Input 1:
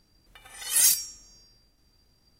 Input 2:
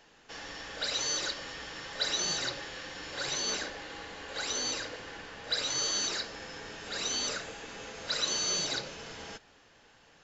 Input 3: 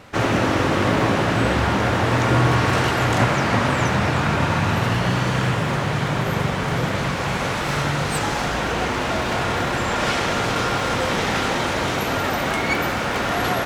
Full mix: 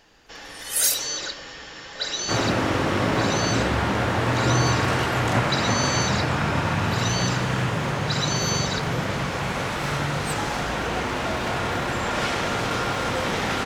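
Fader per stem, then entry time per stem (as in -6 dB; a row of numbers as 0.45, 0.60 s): -1.0, +3.0, -3.5 dB; 0.00, 0.00, 2.15 s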